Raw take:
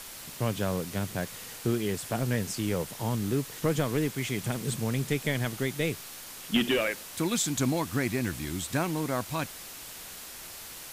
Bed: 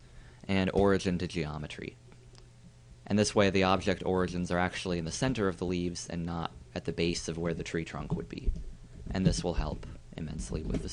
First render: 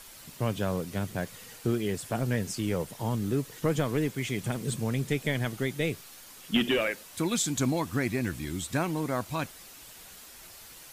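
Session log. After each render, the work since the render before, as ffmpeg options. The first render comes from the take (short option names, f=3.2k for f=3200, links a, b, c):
-af "afftdn=nr=7:nf=-44"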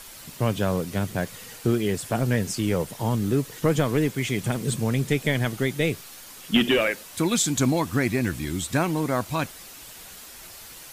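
-af "volume=5.5dB"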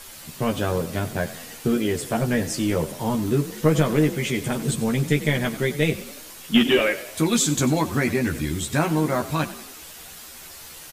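-filter_complex "[0:a]asplit=2[a][b];[b]adelay=13,volume=-3dB[c];[a][c]amix=inputs=2:normalize=0,asplit=6[d][e][f][g][h][i];[e]adelay=93,afreqshift=36,volume=-15.5dB[j];[f]adelay=186,afreqshift=72,volume=-21dB[k];[g]adelay=279,afreqshift=108,volume=-26.5dB[l];[h]adelay=372,afreqshift=144,volume=-32dB[m];[i]adelay=465,afreqshift=180,volume=-37.6dB[n];[d][j][k][l][m][n]amix=inputs=6:normalize=0"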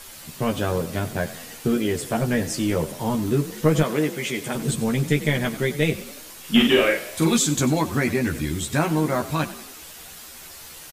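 -filter_complex "[0:a]asettb=1/sr,asplit=3[a][b][c];[a]atrim=end=3.834[d];[b]atrim=start=3.83:end=4.55,asetpts=PTS-STARTPTS,afade=t=in:d=0.004:c=qsin,afade=t=out:st=0.716:d=0.004:c=qsin,highpass=f=310:p=1[e];[c]atrim=start=4.546[f];[d][e]acrossfade=d=0.004:c1=hsin:c2=qsin[g];[g][f]acrossfade=d=0.004:c1=qsin:c2=hsin,asplit=3[h][i][j];[h]afade=t=out:st=6.45:d=0.02[k];[i]asplit=2[l][m];[m]adelay=43,volume=-3.5dB[n];[l][n]amix=inputs=2:normalize=0,afade=t=in:st=6.45:d=0.02,afade=t=out:st=7.36:d=0.02[o];[j]afade=t=in:st=7.36:d=0.02[p];[k][o][p]amix=inputs=3:normalize=0"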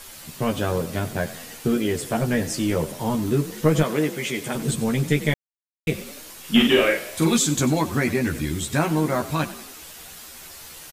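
-filter_complex "[0:a]asplit=3[a][b][c];[a]atrim=end=5.34,asetpts=PTS-STARTPTS,afade=t=out:st=5.336:d=0.004:c=hsin[d];[b]atrim=start=5.34:end=5.87,asetpts=PTS-STARTPTS,volume=0[e];[c]atrim=start=5.87,asetpts=PTS-STARTPTS,afade=t=in:d=0.004:c=hsin[f];[d][e][f]concat=n=3:v=0:a=1"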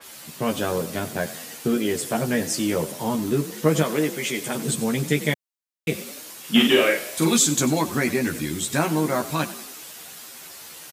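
-af "highpass=150,adynamicequalizer=threshold=0.0158:dfrequency=3900:dqfactor=0.7:tfrequency=3900:tqfactor=0.7:attack=5:release=100:ratio=0.375:range=2:mode=boostabove:tftype=highshelf"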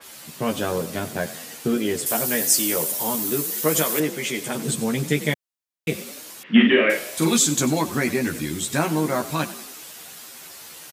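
-filter_complex "[0:a]asettb=1/sr,asplit=3[a][b][c];[a]atrim=end=2.064[d];[b]atrim=start=2.06:end=4,asetpts=PTS-STARTPTS,afade=t=in:d=0.004:c=qsin,afade=t=out:st=1.936:d=0.004:c=qsin,aemphasis=mode=production:type=bsi[e];[c]atrim=start=3.996[f];[d][e]acrossfade=d=0.004:c1=hsin:c2=qsin[g];[g][f]acrossfade=d=0.004:c1=qsin:c2=hsin,asettb=1/sr,asplit=3[h][i][j];[h]atrim=end=6.434[k];[i]atrim=start=6.43:end=6.9,asetpts=PTS-STARTPTS,afade=t=in:d=0.004:c=qsin,afade=t=out:st=0.466:d=0.004:c=qsin,highpass=180,equalizer=f=210:t=q:w=4:g=9,equalizer=f=800:t=q:w=4:g=-6,equalizer=f=1.2k:t=q:w=4:g=-3,equalizer=f=1.9k:t=q:w=4:g=8,lowpass=f=2.8k:w=0.5412,lowpass=f=2.8k:w=1.3066[l];[j]atrim=start=6.896[m];[k][l]acrossfade=d=0.004:c1=hsin:c2=qsin[n];[n][m]acrossfade=d=0.004:c1=qsin:c2=hsin"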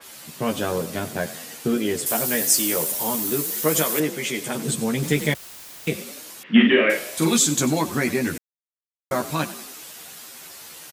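-filter_complex "[0:a]asettb=1/sr,asplit=3[a][b][c];[a]atrim=end=2.074[d];[b]atrim=start=2.07:end=3.82,asetpts=PTS-STARTPTS,afade=t=in:d=0.004:c=qsin,afade=t=out:st=1.746:d=0.004:c=qsin,acrusher=bits=7:dc=4:mix=0:aa=0.000001[e];[c]atrim=start=3.816[f];[d][e]acrossfade=d=0.004:c1=hsin:c2=qsin[g];[g][f]acrossfade=d=0.004:c1=qsin:c2=hsin,asettb=1/sr,asplit=3[h][i][j];[h]atrim=end=5.024[k];[i]atrim=start=5.02:end=5.89,asetpts=PTS-STARTPTS,afade=t=in:d=0.004:c=qsin,afade=t=out:st=0.866:d=0.004:c=qsin,aeval=exprs='val(0)+0.5*0.0237*sgn(val(0))':c=same[l];[j]atrim=start=5.886[m];[k][l]acrossfade=d=0.004:c1=hsin:c2=qsin[n];[n][m]acrossfade=d=0.004:c1=qsin:c2=hsin,asplit=3[o][p][q];[o]atrim=end=8.38,asetpts=PTS-STARTPTS,afade=t=out:st=8.376:d=0.004:c=hsin[r];[p]atrim=start=8.38:end=9.11,asetpts=PTS-STARTPTS,volume=0[s];[q]atrim=start=9.11,asetpts=PTS-STARTPTS,afade=t=in:d=0.004:c=hsin[t];[r][s][t]concat=n=3:v=0:a=1"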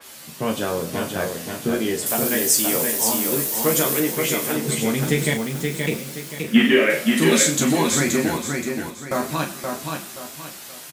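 -filter_complex "[0:a]asplit=2[a][b];[b]adelay=36,volume=-7.5dB[c];[a][c]amix=inputs=2:normalize=0,aecho=1:1:525|1050|1575|2100:0.596|0.203|0.0689|0.0234"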